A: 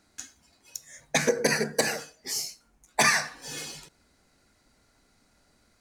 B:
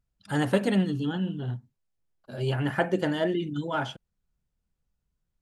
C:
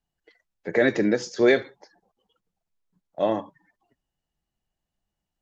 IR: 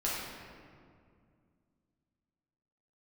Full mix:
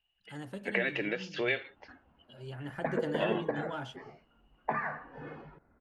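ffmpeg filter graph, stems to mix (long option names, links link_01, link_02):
-filter_complex "[0:a]lowpass=frequency=1500:width=0.5412,lowpass=frequency=1500:width=1.3066,acompressor=threshold=-29dB:ratio=6,adelay=1700,volume=0dB[link_01];[1:a]acrossover=split=400|3000[link_02][link_03][link_04];[link_03]acompressor=threshold=-28dB:ratio=6[link_05];[link_02][link_05][link_04]amix=inputs=3:normalize=0,volume=-8.5dB,afade=type=in:start_time=2.43:duration=0.76:silence=0.375837[link_06];[2:a]equalizer=frequency=170:width_type=o:width=2:gain=-13,acompressor=threshold=-31dB:ratio=4,lowpass=frequency=2800:width_type=q:width=12,volume=-1dB[link_07];[link_01][link_06][link_07]amix=inputs=3:normalize=0"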